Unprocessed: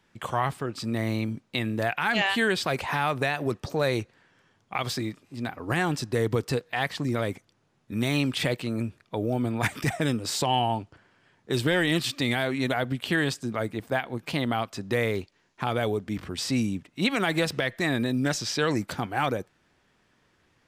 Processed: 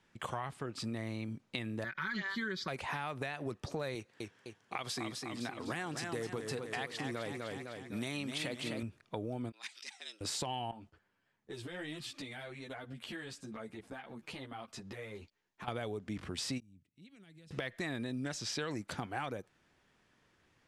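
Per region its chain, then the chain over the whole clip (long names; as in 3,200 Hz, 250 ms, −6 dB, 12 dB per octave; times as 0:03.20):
0:01.84–0:02.68: phaser with its sweep stopped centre 2,700 Hz, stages 6 + comb filter 5.3 ms, depth 68%
0:03.95–0:08.83: high-pass filter 180 Hz 6 dB per octave + high-shelf EQ 6,300 Hz +4.5 dB + feedback echo with a swinging delay time 254 ms, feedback 52%, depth 94 cents, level −7 dB
0:09.52–0:10.21: resonant band-pass 4,500 Hz, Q 2.5 + frequency shifter +93 Hz
0:10.71–0:15.68: noise gate −53 dBFS, range −9 dB + downward compressor 4 to 1, threshold −34 dBFS + string-ensemble chorus
0:16.60–0:17.51: high-pass filter 59 Hz + guitar amp tone stack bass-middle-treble 10-0-1 + downward compressor 2 to 1, threshold −55 dBFS
whole clip: Chebyshev low-pass filter 12,000 Hz, order 10; downward compressor, threshold −31 dBFS; every ending faded ahead of time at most 590 dB per second; level −4 dB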